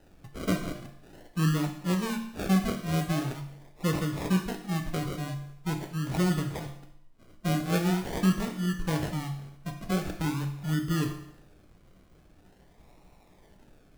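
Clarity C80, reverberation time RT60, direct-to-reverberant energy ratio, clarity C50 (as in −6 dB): 11.0 dB, 0.70 s, 4.0 dB, 8.5 dB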